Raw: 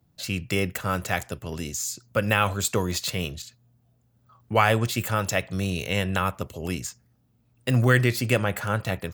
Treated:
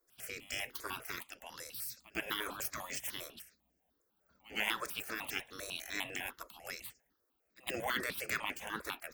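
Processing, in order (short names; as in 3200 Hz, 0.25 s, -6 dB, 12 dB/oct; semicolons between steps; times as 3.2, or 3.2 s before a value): spectral gate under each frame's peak -15 dB weak; on a send: reverse echo 0.108 s -21 dB; on the sum: step phaser 10 Hz 790–3800 Hz; gain -1.5 dB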